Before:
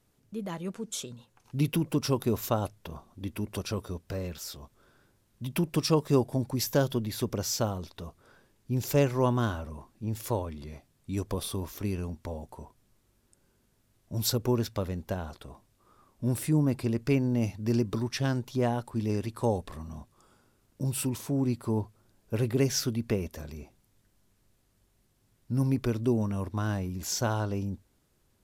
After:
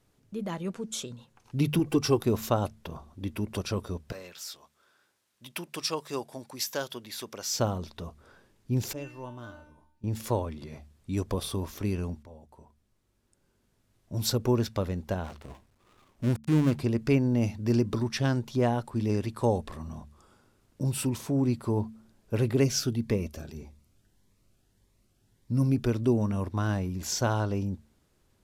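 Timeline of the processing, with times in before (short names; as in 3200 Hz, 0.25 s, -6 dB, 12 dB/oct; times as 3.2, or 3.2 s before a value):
1.79–2.21 comb 2.6 ms
4.12–7.54 HPF 1400 Hz 6 dB/oct
8.93–10.04 resonator 300 Hz, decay 0.63 s, mix 90%
12.23–14.56 fade in, from -15.5 dB
15.24–16.8 switching dead time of 0.24 ms
22.64–25.86 cascading phaser rising 1.7 Hz
whole clip: high shelf 11000 Hz -8.5 dB; de-hum 73.8 Hz, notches 3; gain +2 dB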